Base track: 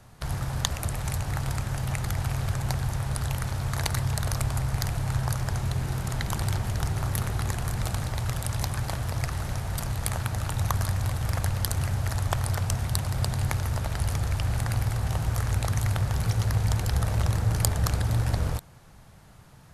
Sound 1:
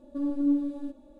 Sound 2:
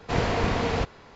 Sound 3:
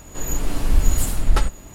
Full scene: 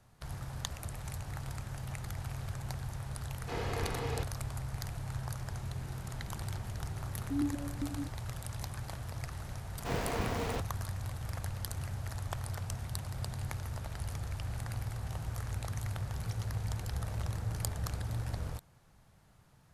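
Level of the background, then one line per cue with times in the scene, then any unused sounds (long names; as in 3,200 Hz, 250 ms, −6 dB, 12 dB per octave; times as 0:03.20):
base track −11.5 dB
0:03.39: mix in 2 −13 dB + comb filter 2.4 ms, depth 39%
0:07.15: mix in 1 −1 dB + formant filter that steps through the vowels 7.5 Hz
0:09.76: mix in 2 −9.5 dB + gap after every zero crossing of 0.11 ms
not used: 3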